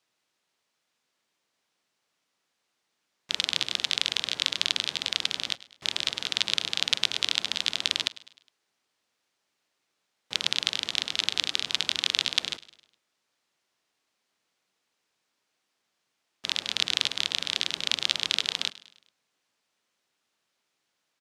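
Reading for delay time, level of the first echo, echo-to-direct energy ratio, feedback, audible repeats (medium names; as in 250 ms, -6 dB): 103 ms, -19.0 dB, -18.0 dB, 50%, 3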